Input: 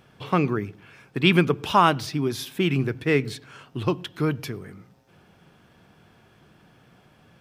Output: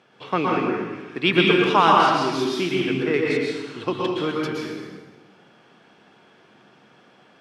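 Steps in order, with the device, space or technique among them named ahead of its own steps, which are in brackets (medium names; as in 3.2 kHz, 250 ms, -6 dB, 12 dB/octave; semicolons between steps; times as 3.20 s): 2.65–3.14 s: de-esser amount 95%; supermarket ceiling speaker (band-pass 260–6000 Hz; reverberation RT60 1.3 s, pre-delay 109 ms, DRR -3 dB)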